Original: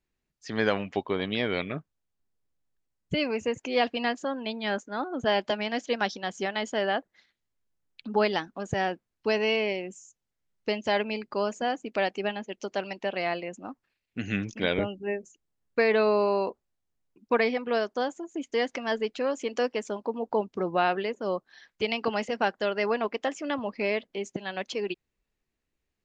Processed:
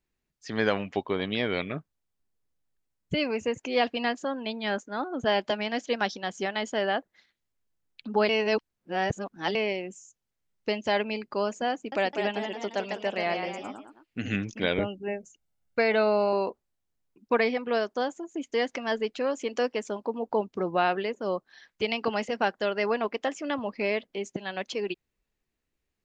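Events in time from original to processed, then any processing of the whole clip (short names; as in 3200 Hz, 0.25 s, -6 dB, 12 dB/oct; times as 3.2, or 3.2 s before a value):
8.29–9.55 reverse
11.71–14.36 echoes that change speed 0.21 s, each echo +1 st, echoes 3, each echo -6 dB
15.08–16.33 comb 1.4 ms, depth 45%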